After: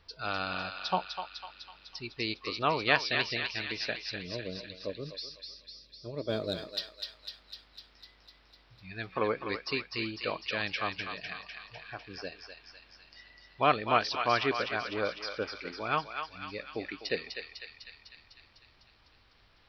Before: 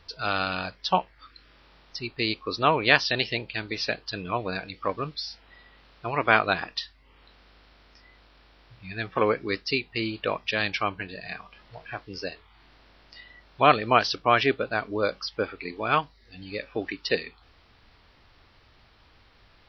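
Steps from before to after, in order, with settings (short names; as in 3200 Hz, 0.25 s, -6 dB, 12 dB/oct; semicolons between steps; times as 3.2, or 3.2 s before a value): 4.07–6.73 spectral gain 650–3200 Hz -20 dB; 6.29–6.81 sample leveller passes 1; thinning echo 0.251 s, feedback 69%, high-pass 1200 Hz, level -4 dB; gain -7 dB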